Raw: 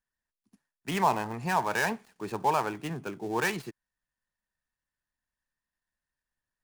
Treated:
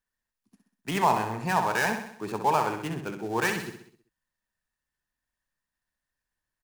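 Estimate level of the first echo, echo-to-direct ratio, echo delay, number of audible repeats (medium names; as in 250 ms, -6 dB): -7.5 dB, -6.0 dB, 64 ms, 5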